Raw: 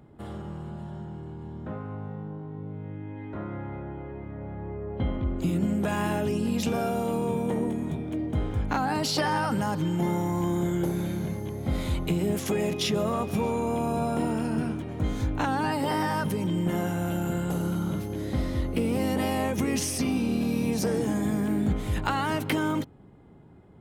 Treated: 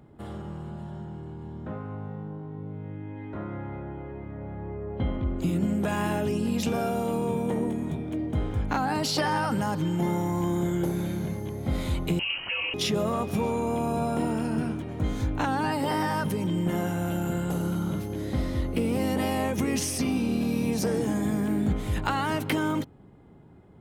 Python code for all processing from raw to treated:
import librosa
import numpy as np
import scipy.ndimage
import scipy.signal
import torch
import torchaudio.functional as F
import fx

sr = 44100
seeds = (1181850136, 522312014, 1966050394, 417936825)

y = fx.chain(x, sr, fx.peak_eq(hz=280.0, db=-13.5, octaves=0.73),
    fx.freq_invert(carrier_hz=3000), at=(12.19, 12.74))